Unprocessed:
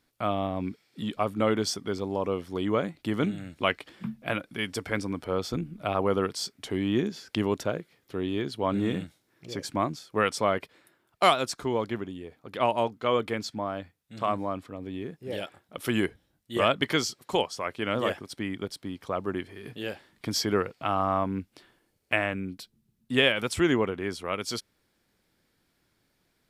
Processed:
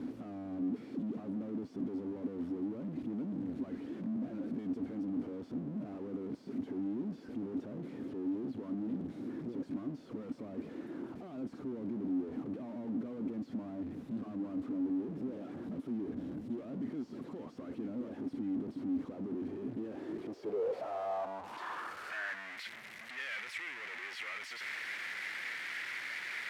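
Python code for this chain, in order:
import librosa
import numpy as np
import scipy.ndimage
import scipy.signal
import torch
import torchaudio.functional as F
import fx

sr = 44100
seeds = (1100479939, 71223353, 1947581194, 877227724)

y = np.sign(x) * np.sqrt(np.mean(np.square(x)))
y = fx.filter_sweep_bandpass(y, sr, from_hz=260.0, to_hz=2000.0, start_s=19.8, end_s=22.53, q=4.5)
y = y * librosa.db_to_amplitude(1.0)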